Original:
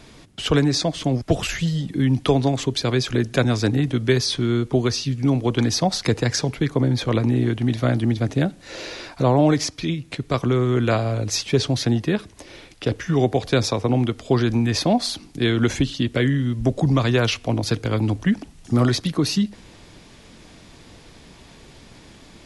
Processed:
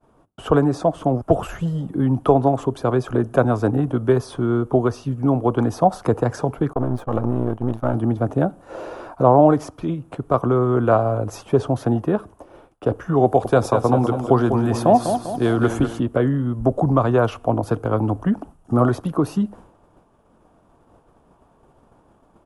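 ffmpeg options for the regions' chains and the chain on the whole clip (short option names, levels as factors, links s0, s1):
-filter_complex "[0:a]asettb=1/sr,asplit=3[s0][s1][s2];[s0]atrim=end=6.734[s3];[s1]atrim=start=6.73:end=7.94,asetpts=PTS-STARTPTS,afade=t=in:d=0.004:c=qsin,afade=t=out:st=1.206:d=0.004:c=qsin,aeval=exprs='if(lt(val(0),0),0.251*val(0),val(0))':c=same,agate=range=0.0224:threshold=0.0447:ratio=3:release=100:detection=peak[s4];[s2]atrim=start=7.936[s5];[s3][s4]acrossfade=d=0.004:c1=hsin:c2=qsin[s6];[s6][s5]acrossfade=d=0.004:c1=qsin:c2=hsin,asettb=1/sr,asplit=3[s7][s8][s9];[s7]atrim=end=13.254[s10];[s8]atrim=start=13.25:end=16,asetpts=PTS-STARTPTS,afade=t=in:d=0.004:c=qsin,afade=t=out:st=2.746:d=0.004:c=qsin,highshelf=f=2800:g=7.5,aecho=1:1:198|396|594|792|990:0.398|0.187|0.0879|0.0413|0.0194,atrim=end_sample=121275[s11];[s9]atrim=start=15.996[s12];[s10][s11]acrossfade=d=0.004:c1=hsin:c2=qsin[s13];[s13][s12]acrossfade=d=0.004:c1=qsin:c2=hsin,agate=range=0.0224:threshold=0.0141:ratio=3:detection=peak,firequalizer=gain_entry='entry(160,0);entry(700,9);entry(1300,6);entry(2000,-15);entry(2900,-11);entry(4100,-21);entry(9500,-5)':delay=0.05:min_phase=1,volume=0.891"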